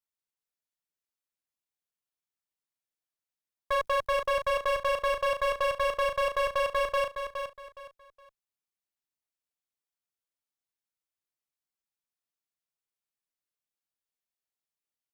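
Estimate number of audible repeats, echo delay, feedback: 3, 416 ms, 28%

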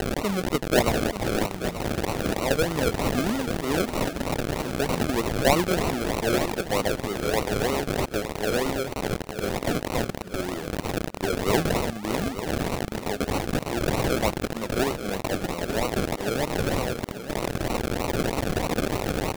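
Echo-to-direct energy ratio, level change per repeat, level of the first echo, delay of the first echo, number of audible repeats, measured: -11.0 dB, -14.5 dB, -11.0 dB, 885 ms, 2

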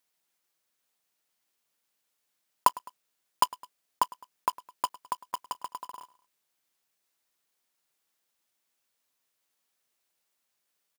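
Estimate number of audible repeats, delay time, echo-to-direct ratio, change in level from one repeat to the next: 2, 105 ms, -19.5 dB, -5.5 dB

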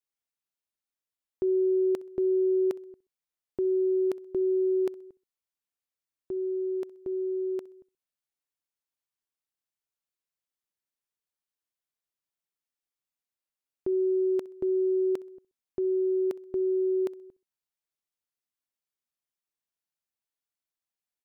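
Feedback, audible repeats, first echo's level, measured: 32%, 2, -21.5 dB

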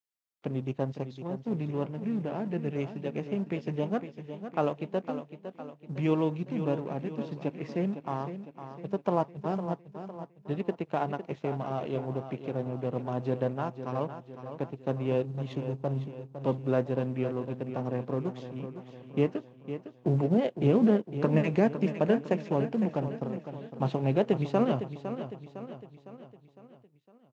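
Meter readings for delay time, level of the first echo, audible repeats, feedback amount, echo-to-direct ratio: 507 ms, -10.5 dB, 5, 50%, -9.0 dB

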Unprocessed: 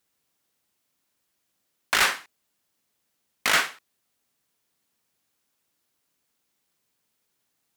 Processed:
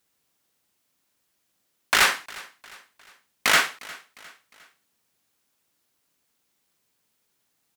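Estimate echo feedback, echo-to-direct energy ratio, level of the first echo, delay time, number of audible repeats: 45%, -20.0 dB, -21.0 dB, 355 ms, 3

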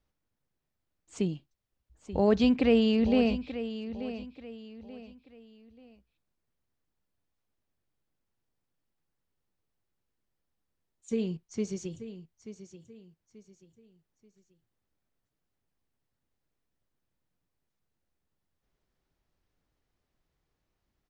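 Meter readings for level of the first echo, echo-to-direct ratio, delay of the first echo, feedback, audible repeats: -12.5 dB, -12.0 dB, 884 ms, 34%, 3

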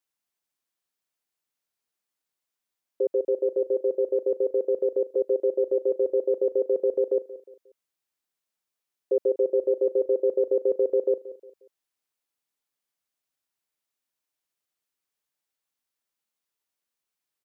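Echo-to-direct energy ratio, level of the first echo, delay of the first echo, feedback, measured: -16.0 dB, -16.5 dB, 179 ms, 38%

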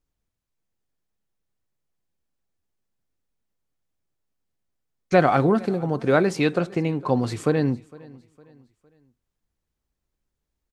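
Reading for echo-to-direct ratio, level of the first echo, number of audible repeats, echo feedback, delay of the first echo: -22.5 dB, -23.0 dB, 2, 40%, 458 ms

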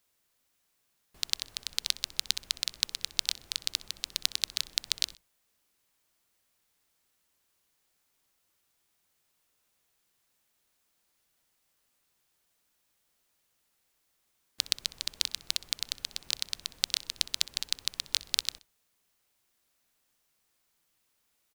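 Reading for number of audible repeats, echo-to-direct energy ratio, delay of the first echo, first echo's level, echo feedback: 2, -19.5 dB, 63 ms, -20.0 dB, 31%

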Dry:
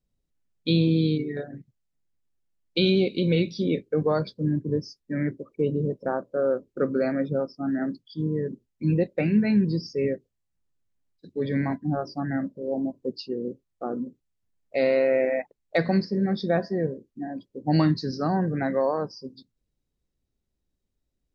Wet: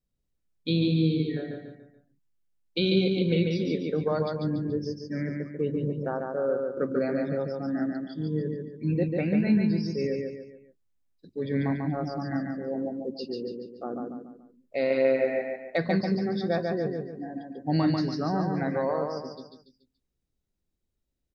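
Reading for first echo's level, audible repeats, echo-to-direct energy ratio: -3.5 dB, 4, -2.5 dB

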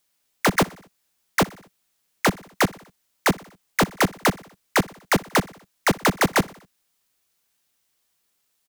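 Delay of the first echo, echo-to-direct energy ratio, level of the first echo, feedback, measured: 61 ms, -20.0 dB, -22.0 dB, 59%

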